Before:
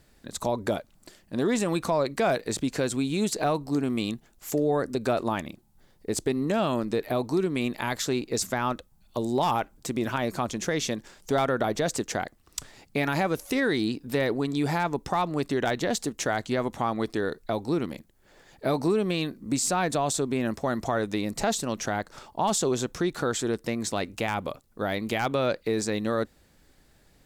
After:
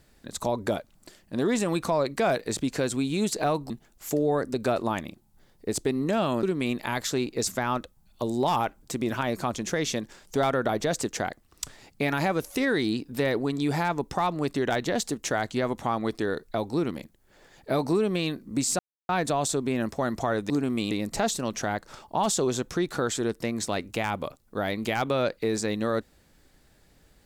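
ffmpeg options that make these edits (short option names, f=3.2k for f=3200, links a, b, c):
-filter_complex "[0:a]asplit=6[a][b][c][d][e][f];[a]atrim=end=3.702[g];[b]atrim=start=4.108:end=6.842[h];[c]atrim=start=7.378:end=19.74,asetpts=PTS-STARTPTS,afade=t=out:st=12.358:d=0.004:c=hsin,apad=pad_dur=0.3[i];[d]atrim=start=19.74:end=21.152,asetpts=PTS-STARTPTS,afade=t=in:d=0.004:c=hsin[j];[e]atrim=start=3.698:end=4.112[k];[f]atrim=start=21.148[l];[g][h]acrossfade=d=0.004:c1=hsin:c2=hsin[m];[i][j]concat=n=2:v=0:a=1[n];[m][n]acrossfade=d=0.004:c1=hsin:c2=hsin[o];[o][k]acrossfade=d=0.004:c1=hsin:c2=hsin[p];[p][l]acrossfade=d=0.004:c1=hsin:c2=hsin"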